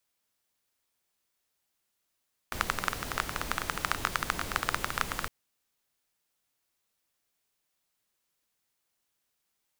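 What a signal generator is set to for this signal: rain from filtered ticks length 2.76 s, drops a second 15, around 1.3 kHz, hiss -3.5 dB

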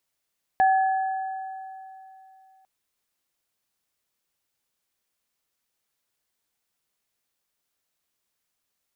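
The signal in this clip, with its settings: sine partials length 2.05 s, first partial 764 Hz, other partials 1.7 kHz, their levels -10.5 dB, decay 2.98 s, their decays 2.35 s, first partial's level -15 dB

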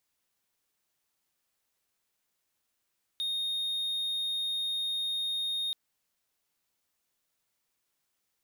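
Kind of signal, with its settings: tone triangle 3.7 kHz -27.5 dBFS 2.53 s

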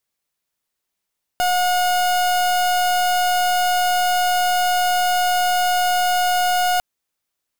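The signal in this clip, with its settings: pulse 722 Hz, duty 37% -18 dBFS 5.40 s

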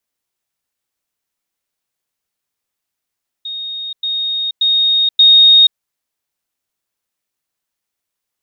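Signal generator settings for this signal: level ladder 3.72 kHz -22 dBFS, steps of 6 dB, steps 4, 0.48 s 0.10 s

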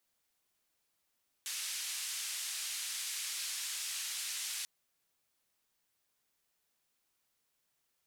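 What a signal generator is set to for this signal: noise band 2.2–9.7 kHz, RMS -39.5 dBFS 3.19 s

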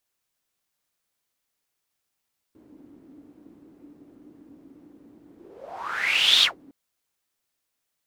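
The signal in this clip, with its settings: whoosh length 4.16 s, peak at 3.88 s, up 1.20 s, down 0.14 s, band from 290 Hz, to 3.6 kHz, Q 8.4, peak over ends 33 dB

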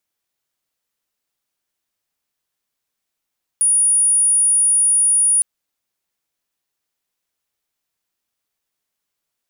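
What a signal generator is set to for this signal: tone sine 9.67 kHz -11.5 dBFS 1.81 s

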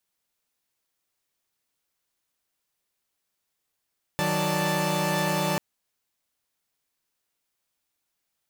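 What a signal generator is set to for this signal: chord D#3/F#3/D5/A5 saw, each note -26.5 dBFS 1.39 s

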